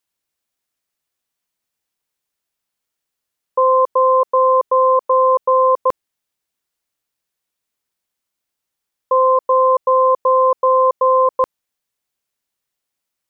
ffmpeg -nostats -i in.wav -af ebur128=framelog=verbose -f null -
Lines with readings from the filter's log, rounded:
Integrated loudness:
  I:         -14.7 LUFS
  Threshold: -24.9 LUFS
Loudness range:
  LRA:         7.9 LU
  Threshold: -37.5 LUFS
  LRA low:   -23.2 LUFS
  LRA high:  -15.3 LUFS